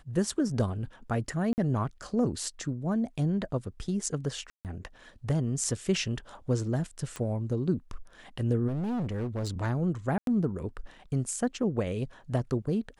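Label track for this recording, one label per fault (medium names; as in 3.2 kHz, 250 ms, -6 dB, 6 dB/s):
1.530000	1.580000	dropout 49 ms
4.500000	4.650000	dropout 148 ms
7.160000	7.160000	pop -22 dBFS
8.670000	9.630000	clipped -28.5 dBFS
10.180000	10.270000	dropout 92 ms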